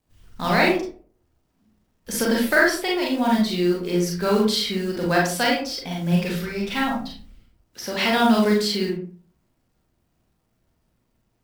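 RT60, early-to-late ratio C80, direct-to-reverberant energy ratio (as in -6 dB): 0.45 s, 9.0 dB, -2.5 dB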